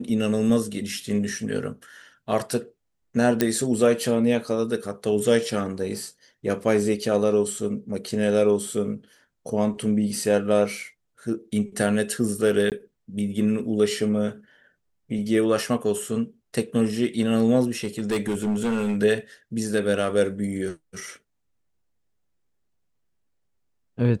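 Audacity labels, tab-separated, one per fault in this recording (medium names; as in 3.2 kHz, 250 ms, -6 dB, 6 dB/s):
3.410000	3.410000	pop -6 dBFS
12.700000	12.720000	dropout 18 ms
17.840000	19.020000	clipped -20 dBFS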